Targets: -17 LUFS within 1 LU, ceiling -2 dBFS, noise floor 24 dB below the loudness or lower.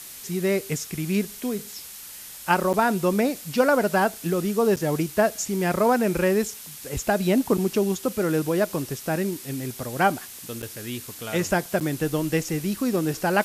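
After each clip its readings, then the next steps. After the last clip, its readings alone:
dropouts 4; longest dropout 8.0 ms; noise floor -41 dBFS; noise floor target -49 dBFS; loudness -24.5 LUFS; peak -5.5 dBFS; loudness target -17.0 LUFS
-> interpolate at 2.73/4.76/10.62/11.8, 8 ms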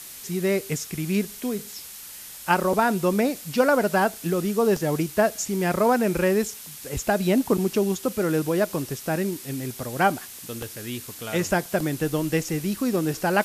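dropouts 0; noise floor -41 dBFS; noise floor target -49 dBFS
-> noise print and reduce 8 dB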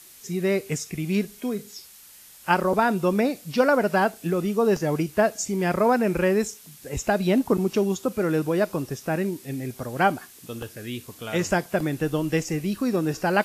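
noise floor -49 dBFS; loudness -24.5 LUFS; peak -5.5 dBFS; loudness target -17.0 LUFS
-> gain +7.5 dB; limiter -2 dBFS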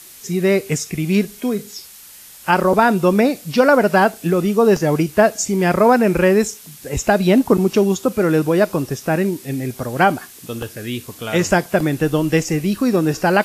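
loudness -17.0 LUFS; peak -2.0 dBFS; noise floor -41 dBFS

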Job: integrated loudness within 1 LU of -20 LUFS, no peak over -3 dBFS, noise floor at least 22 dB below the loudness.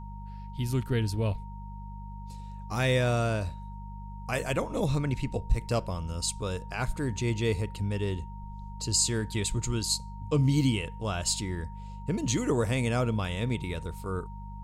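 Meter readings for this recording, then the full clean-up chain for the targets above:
hum 50 Hz; harmonics up to 200 Hz; hum level -38 dBFS; steady tone 930 Hz; tone level -47 dBFS; loudness -30.0 LUFS; peak -14.0 dBFS; loudness target -20.0 LUFS
-> de-hum 50 Hz, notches 4; notch 930 Hz, Q 30; gain +10 dB

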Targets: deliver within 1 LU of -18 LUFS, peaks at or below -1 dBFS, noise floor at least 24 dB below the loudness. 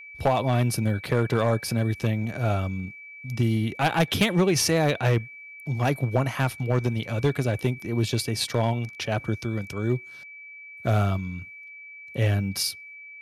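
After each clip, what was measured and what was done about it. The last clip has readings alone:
clipped 0.6%; flat tops at -14.0 dBFS; steady tone 2300 Hz; tone level -41 dBFS; loudness -25.5 LUFS; peak -14.0 dBFS; loudness target -18.0 LUFS
-> clip repair -14 dBFS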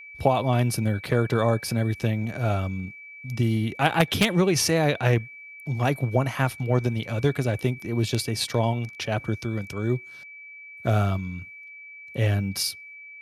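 clipped 0.0%; steady tone 2300 Hz; tone level -41 dBFS
-> notch 2300 Hz, Q 30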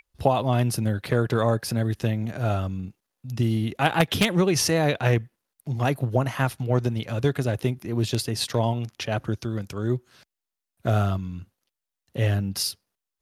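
steady tone none; loudness -25.0 LUFS; peak -5.0 dBFS; loudness target -18.0 LUFS
-> gain +7 dB; limiter -1 dBFS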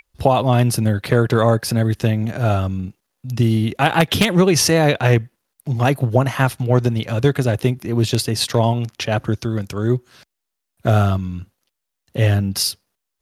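loudness -18.5 LUFS; peak -1.0 dBFS; noise floor -80 dBFS

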